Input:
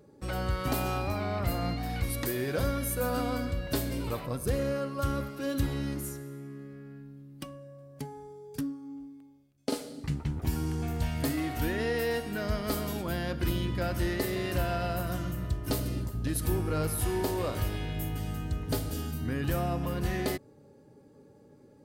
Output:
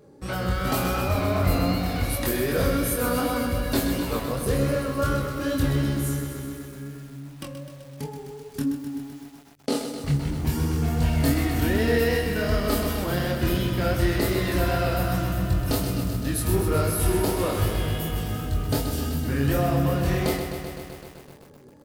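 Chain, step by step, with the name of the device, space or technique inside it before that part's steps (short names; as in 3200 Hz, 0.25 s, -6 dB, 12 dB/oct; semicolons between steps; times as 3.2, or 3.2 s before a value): double-tracked vocal (doubler 21 ms -7 dB; chorus 2.7 Hz, depth 6.4 ms); lo-fi delay 0.128 s, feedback 80%, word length 9-bit, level -8 dB; gain +8 dB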